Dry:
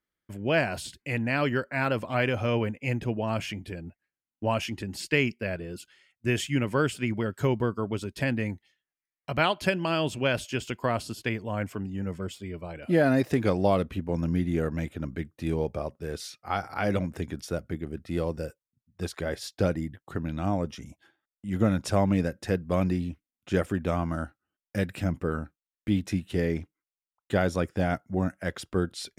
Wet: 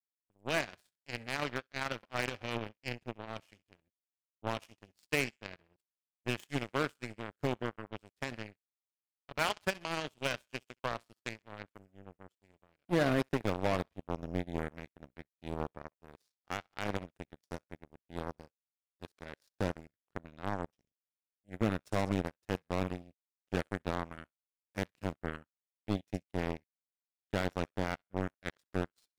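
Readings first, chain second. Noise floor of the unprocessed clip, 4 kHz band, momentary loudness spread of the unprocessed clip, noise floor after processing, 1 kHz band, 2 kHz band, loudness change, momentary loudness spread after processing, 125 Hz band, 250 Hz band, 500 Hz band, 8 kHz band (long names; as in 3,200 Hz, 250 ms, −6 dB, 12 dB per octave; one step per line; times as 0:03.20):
below −85 dBFS, −6.5 dB, 11 LU, below −85 dBFS, −7.0 dB, −7.5 dB, −8.5 dB, 17 LU, −11.5 dB, −10.5 dB, −10.0 dB, −8.0 dB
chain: feedback echo with a high-pass in the loop 65 ms, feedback 63%, high-pass 790 Hz, level −9.5 dB
gain into a clipping stage and back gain 16 dB
power curve on the samples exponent 3
level −4 dB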